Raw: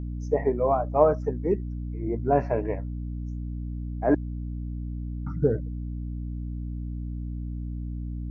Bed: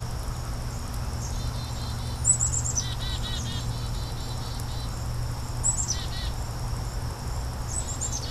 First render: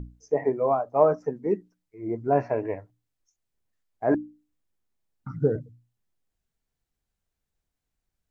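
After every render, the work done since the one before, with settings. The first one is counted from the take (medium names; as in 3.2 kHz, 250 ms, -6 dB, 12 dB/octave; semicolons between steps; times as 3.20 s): hum notches 60/120/180/240/300 Hz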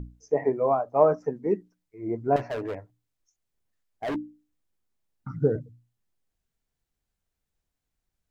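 2.36–4.16 s: overload inside the chain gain 27.5 dB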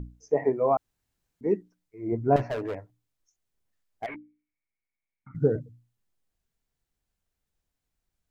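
0.77–1.41 s: room tone; 2.12–2.54 s: bass shelf 190 Hz +9 dB; 4.06–5.35 s: four-pole ladder low-pass 2.3 kHz, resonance 90%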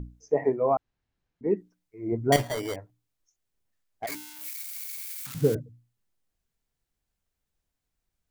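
0.56–1.57 s: distance through air 160 m; 2.32–2.76 s: sample-rate reducer 2.6 kHz; 4.07–5.55 s: zero-crossing glitches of -25 dBFS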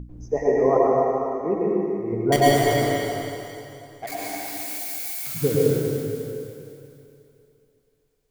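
two-band feedback delay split 420 Hz, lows 182 ms, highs 252 ms, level -9.5 dB; plate-style reverb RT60 2.5 s, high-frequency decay 0.9×, pre-delay 85 ms, DRR -5.5 dB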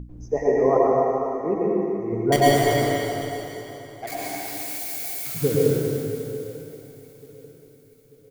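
feedback delay 891 ms, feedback 44%, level -19 dB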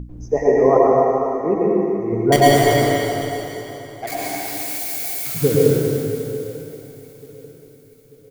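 trim +5 dB; peak limiter -1 dBFS, peak gain reduction 1.5 dB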